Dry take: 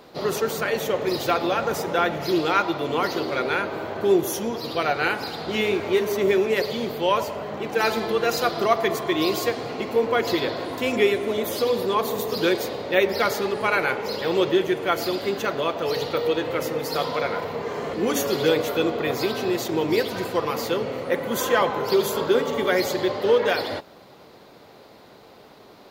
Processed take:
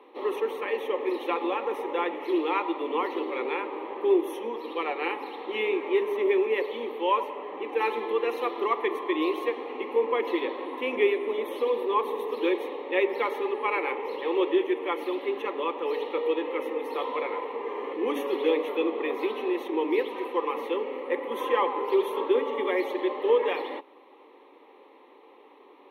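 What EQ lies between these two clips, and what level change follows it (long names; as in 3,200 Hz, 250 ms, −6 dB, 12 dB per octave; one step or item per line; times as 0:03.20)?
moving average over 6 samples
Chebyshev high-pass with heavy ripple 200 Hz, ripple 3 dB
phaser with its sweep stopped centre 990 Hz, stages 8
0.0 dB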